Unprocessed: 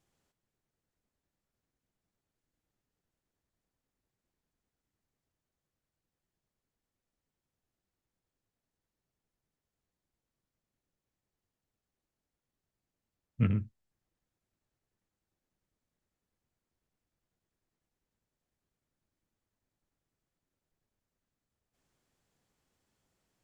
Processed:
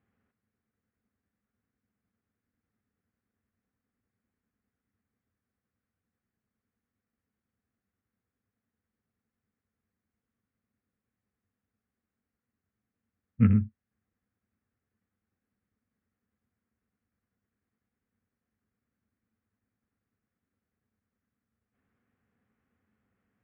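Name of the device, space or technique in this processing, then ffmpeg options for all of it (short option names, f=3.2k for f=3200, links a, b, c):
bass cabinet: -af "highpass=75,equalizer=f=95:t=q:w=4:g=4,equalizer=f=150:t=q:w=4:g=-9,equalizer=f=220:t=q:w=4:g=8,equalizer=f=340:t=q:w=4:g=-8,equalizer=f=610:t=q:w=4:g=-9,equalizer=f=910:t=q:w=4:g=-9,lowpass=f=2.1k:w=0.5412,lowpass=f=2.1k:w=1.3066,volume=5dB"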